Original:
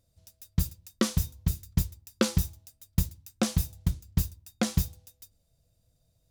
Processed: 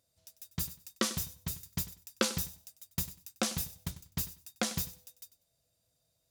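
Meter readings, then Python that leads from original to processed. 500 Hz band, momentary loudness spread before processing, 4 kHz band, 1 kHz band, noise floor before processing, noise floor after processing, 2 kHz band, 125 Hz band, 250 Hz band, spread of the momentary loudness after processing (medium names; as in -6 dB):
-4.5 dB, 8 LU, 0.0 dB, -1.5 dB, -71 dBFS, -78 dBFS, -0.5 dB, -12.5 dB, -8.5 dB, 17 LU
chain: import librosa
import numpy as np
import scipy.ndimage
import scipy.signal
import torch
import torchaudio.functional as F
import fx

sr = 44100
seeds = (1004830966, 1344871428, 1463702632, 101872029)

p1 = fx.highpass(x, sr, hz=130.0, slope=6)
p2 = fx.low_shelf(p1, sr, hz=420.0, db=-9.5)
y = p2 + fx.echo_feedback(p2, sr, ms=96, feedback_pct=20, wet_db=-16, dry=0)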